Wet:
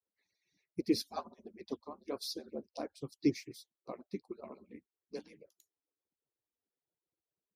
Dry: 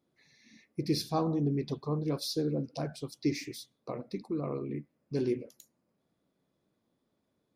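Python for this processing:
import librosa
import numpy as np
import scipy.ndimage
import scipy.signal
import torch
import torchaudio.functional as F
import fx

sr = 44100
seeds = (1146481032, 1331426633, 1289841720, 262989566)

y = fx.hpss_only(x, sr, part='percussive')
y = scipy.signal.sosfilt(scipy.signal.butter(2, 44.0, 'highpass', fs=sr, output='sos'), y)
y = fx.upward_expand(y, sr, threshold_db=-57.0, expansion=1.5)
y = F.gain(torch.from_numpy(y), 1.5).numpy()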